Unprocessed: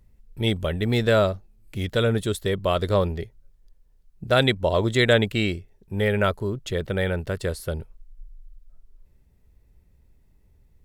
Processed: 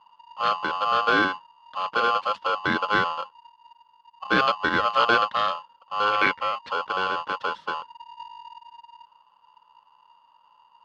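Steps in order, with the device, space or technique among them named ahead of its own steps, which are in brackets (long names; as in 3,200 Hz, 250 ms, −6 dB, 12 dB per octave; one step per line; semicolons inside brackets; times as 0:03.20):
ring modulator pedal into a guitar cabinet (ring modulator with a square carrier 940 Hz; loudspeaker in its box 96–3,500 Hz, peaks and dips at 200 Hz +4 dB, 370 Hz −9 dB, 760 Hz −7 dB, 1,200 Hz +5 dB, 2,400 Hz −10 dB)
0:06.12–0:06.58: parametric band 2,200 Hz +13 dB 0.36 octaves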